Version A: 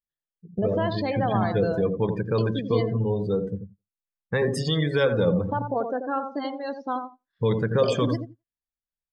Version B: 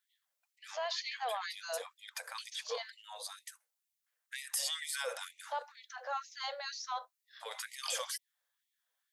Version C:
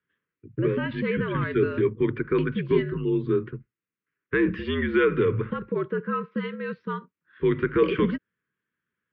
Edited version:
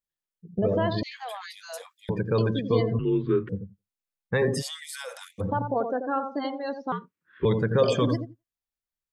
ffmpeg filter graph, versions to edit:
-filter_complex "[1:a]asplit=2[s0][s1];[2:a]asplit=2[s2][s3];[0:a]asplit=5[s4][s5][s6][s7][s8];[s4]atrim=end=1.032[s9];[s0]atrim=start=1.028:end=2.092[s10];[s5]atrim=start=2.088:end=2.992[s11];[s2]atrim=start=2.988:end=3.492[s12];[s6]atrim=start=3.488:end=4.63[s13];[s1]atrim=start=4.59:end=5.42[s14];[s7]atrim=start=5.38:end=6.922[s15];[s3]atrim=start=6.918:end=7.452[s16];[s8]atrim=start=7.448[s17];[s9][s10]acrossfade=d=0.004:c1=hsin:c2=hsin[s18];[s18][s11]acrossfade=d=0.004:c1=hsin:c2=hsin[s19];[s19][s12]acrossfade=d=0.004:c1=hsin:c2=hsin[s20];[s20][s13]acrossfade=d=0.004:c1=hsin:c2=hsin[s21];[s21][s14]acrossfade=d=0.04:c1=tri:c2=tri[s22];[s22][s15]acrossfade=d=0.04:c1=tri:c2=tri[s23];[s23][s16]acrossfade=d=0.004:c1=hsin:c2=hsin[s24];[s24][s17]acrossfade=d=0.004:c1=hsin:c2=hsin"

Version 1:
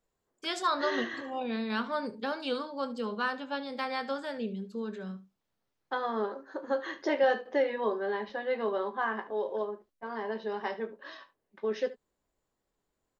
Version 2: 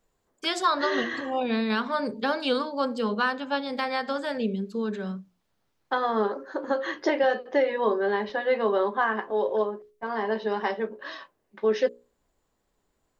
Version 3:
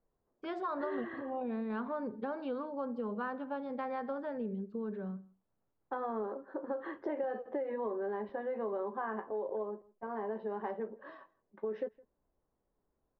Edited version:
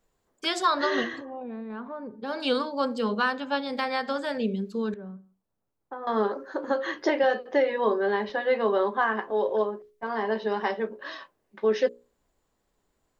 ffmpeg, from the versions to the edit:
-filter_complex "[2:a]asplit=2[s0][s1];[1:a]asplit=3[s2][s3][s4];[s2]atrim=end=1.27[s5];[s0]atrim=start=1.03:end=2.44[s6];[s3]atrim=start=2.2:end=4.942[s7];[s1]atrim=start=4.938:end=6.072[s8];[s4]atrim=start=6.068[s9];[s5][s6]acrossfade=d=0.24:c1=tri:c2=tri[s10];[s10][s7]acrossfade=d=0.24:c1=tri:c2=tri[s11];[s11][s8]acrossfade=d=0.004:c1=hsin:c2=hsin[s12];[s12][s9]acrossfade=d=0.004:c1=hsin:c2=hsin"

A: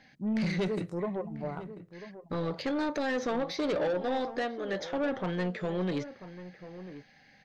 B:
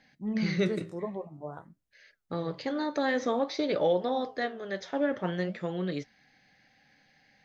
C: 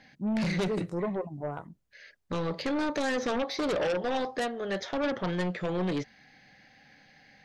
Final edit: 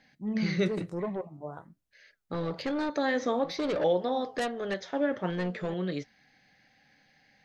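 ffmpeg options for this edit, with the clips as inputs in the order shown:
-filter_complex "[0:a]asplit=4[s0][s1][s2][s3];[1:a]asplit=6[s4][s5][s6][s7][s8][s9];[s4]atrim=end=0.682[s10];[s0]atrim=start=0.678:end=1.212[s11];[s5]atrim=start=1.208:end=2.342[s12];[s1]atrim=start=2.338:end=2.902[s13];[s6]atrim=start=2.898:end=3.442[s14];[s2]atrim=start=3.438:end=3.842[s15];[s7]atrim=start=3.838:end=4.342[s16];[2:a]atrim=start=4.338:end=4.742[s17];[s8]atrim=start=4.738:end=5.302[s18];[s3]atrim=start=5.298:end=5.742[s19];[s9]atrim=start=5.738[s20];[s10][s11]acrossfade=d=0.004:c1=hsin:c2=hsin[s21];[s21][s12]acrossfade=d=0.004:c1=hsin:c2=hsin[s22];[s22][s13]acrossfade=d=0.004:c1=hsin:c2=hsin[s23];[s23][s14]acrossfade=d=0.004:c1=hsin:c2=hsin[s24];[s24][s15]acrossfade=d=0.004:c1=hsin:c2=hsin[s25];[s25][s16]acrossfade=d=0.004:c1=hsin:c2=hsin[s26];[s26][s17]acrossfade=d=0.004:c1=hsin:c2=hsin[s27];[s27][s18]acrossfade=d=0.004:c1=hsin:c2=hsin[s28];[s28][s19]acrossfade=d=0.004:c1=hsin:c2=hsin[s29];[s29][s20]acrossfade=d=0.004:c1=hsin:c2=hsin"

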